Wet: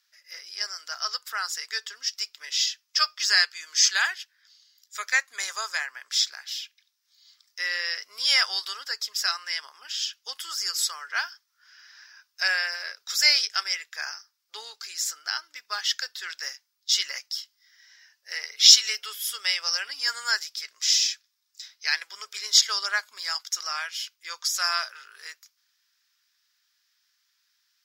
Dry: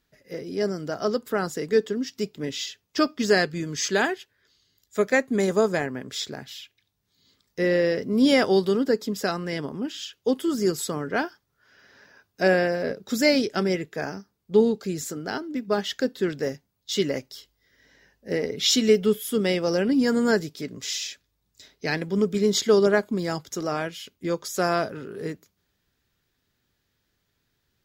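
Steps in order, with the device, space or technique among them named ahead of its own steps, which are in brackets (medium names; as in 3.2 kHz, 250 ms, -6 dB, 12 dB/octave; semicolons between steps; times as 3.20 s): headphones lying on a table (high-pass 1.2 kHz 24 dB/octave; peaking EQ 5.3 kHz +10 dB 0.52 oct); trim +2.5 dB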